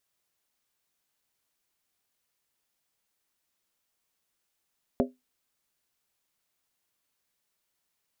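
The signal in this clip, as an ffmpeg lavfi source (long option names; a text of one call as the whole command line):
ffmpeg -f lavfi -i "aevalsrc='0.1*pow(10,-3*t/0.2)*sin(2*PI*253*t)+0.0794*pow(10,-3*t/0.158)*sin(2*PI*403.3*t)+0.0631*pow(10,-3*t/0.137)*sin(2*PI*540.4*t)+0.0501*pow(10,-3*t/0.132)*sin(2*PI*580.9*t)+0.0398*pow(10,-3*t/0.123)*sin(2*PI*671.2*t)':duration=0.63:sample_rate=44100" out.wav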